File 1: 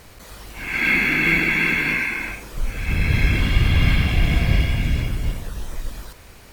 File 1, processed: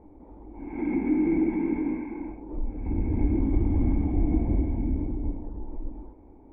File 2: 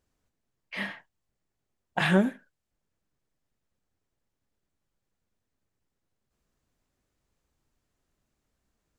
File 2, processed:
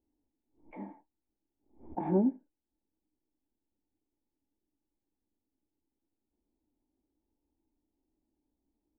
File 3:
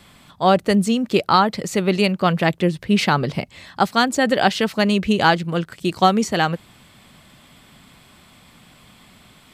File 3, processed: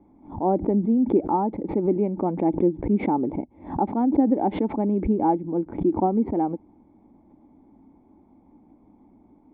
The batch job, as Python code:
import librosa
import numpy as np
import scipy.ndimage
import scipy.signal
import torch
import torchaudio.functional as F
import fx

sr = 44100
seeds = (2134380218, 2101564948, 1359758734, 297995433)

y = fx.formant_cascade(x, sr, vowel='u')
y = fx.peak_eq(y, sr, hz=140.0, db=-13.5, octaves=0.68)
y = fx.pre_swell(y, sr, db_per_s=130.0)
y = F.gain(torch.from_numpy(y), 9.0).numpy()